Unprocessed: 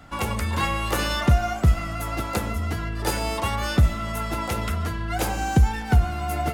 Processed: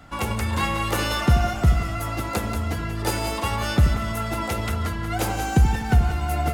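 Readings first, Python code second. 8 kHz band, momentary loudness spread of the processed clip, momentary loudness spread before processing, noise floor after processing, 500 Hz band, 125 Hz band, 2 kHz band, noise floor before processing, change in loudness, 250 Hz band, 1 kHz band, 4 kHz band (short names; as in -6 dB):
+1.0 dB, 7 LU, 7 LU, -29 dBFS, +0.5 dB, +1.0 dB, +0.5 dB, -30 dBFS, +1.0 dB, +1.5 dB, +0.5 dB, +0.5 dB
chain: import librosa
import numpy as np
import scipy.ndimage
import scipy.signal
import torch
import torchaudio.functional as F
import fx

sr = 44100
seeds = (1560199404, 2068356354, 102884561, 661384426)

y = x + fx.echo_split(x, sr, split_hz=440.0, low_ms=81, high_ms=183, feedback_pct=52, wet_db=-8.5, dry=0)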